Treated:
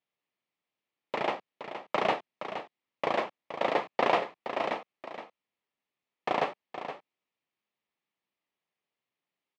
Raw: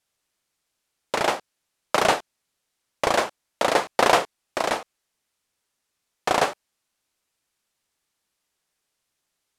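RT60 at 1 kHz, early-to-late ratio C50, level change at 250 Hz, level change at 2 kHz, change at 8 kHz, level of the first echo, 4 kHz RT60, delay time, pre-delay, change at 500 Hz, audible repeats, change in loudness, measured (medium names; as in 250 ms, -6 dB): no reverb, no reverb, -6.0 dB, -8.5 dB, under -20 dB, -10.0 dB, no reverb, 469 ms, no reverb, -6.5 dB, 1, -8.5 dB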